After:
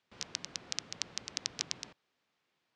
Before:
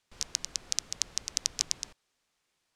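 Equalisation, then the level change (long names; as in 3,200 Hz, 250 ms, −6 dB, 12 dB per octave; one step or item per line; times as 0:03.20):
band-pass filter 140–3,900 Hz
low-shelf EQ 270 Hz +5 dB
0.0 dB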